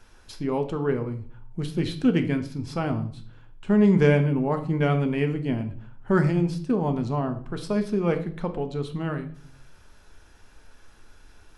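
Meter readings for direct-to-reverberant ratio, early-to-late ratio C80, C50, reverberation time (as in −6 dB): 6.5 dB, 15.5 dB, 11.5 dB, 0.50 s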